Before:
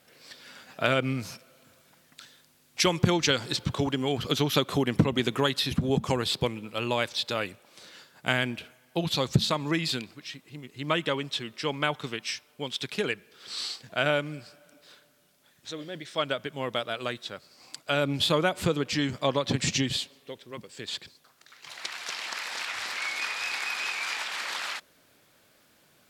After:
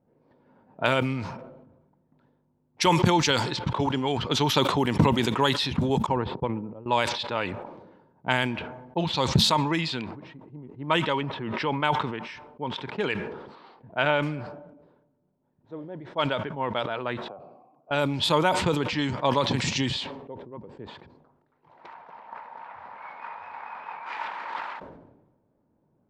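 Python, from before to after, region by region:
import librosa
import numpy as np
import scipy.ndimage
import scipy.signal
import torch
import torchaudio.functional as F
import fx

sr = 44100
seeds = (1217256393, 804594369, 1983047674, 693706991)

y = fx.chain(x, sr, fx.lowpass(hz=1000.0, slope=6),
    fx.upward_expand(threshold_db=-42.0, expansion=2.5), at=(6.06, 6.86))
y = fx.chain(y, sr, fx.lowpass(hz=2100.0, slope=6),
    fx.pre_swell(db_per_s=25.0), at=(11.21, 11.8))
y = fx.chain(y, sr, fx.lowpass(hz=2900.0, slope=12),
    fx.high_shelf(hz=2000.0, db=4.5), at=(13.55, 14.23))
y = fx.chain(y, sr, fx.vowel_filter(vowel='a'),
    fx.peak_eq(hz=140.0, db=11.5, octaves=2.8),
    fx.band_squash(depth_pct=100), at=(17.28, 17.91))
y = fx.chain(y, sr, fx.lowpass(hz=1900.0, slope=6),
    fx.peak_eq(hz=340.0, db=-11.5, octaves=0.63), at=(21.94, 24.06))
y = fx.env_lowpass(y, sr, base_hz=360.0, full_db=-21.0)
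y = fx.peak_eq(y, sr, hz=920.0, db=12.5, octaves=0.28)
y = fx.sustainer(y, sr, db_per_s=50.0)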